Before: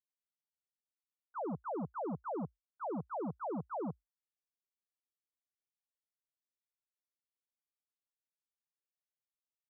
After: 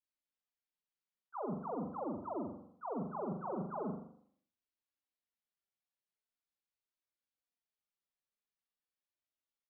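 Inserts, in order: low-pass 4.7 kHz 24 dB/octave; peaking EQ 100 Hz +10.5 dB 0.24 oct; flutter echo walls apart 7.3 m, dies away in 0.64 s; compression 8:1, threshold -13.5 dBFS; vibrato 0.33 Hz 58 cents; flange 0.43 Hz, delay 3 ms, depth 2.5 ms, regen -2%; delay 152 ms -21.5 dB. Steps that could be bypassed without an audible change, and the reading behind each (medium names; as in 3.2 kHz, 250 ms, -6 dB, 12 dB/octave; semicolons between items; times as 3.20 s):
low-pass 4.7 kHz: input has nothing above 1.5 kHz; compression, threshold -13.5 dBFS: peak at its input -27.0 dBFS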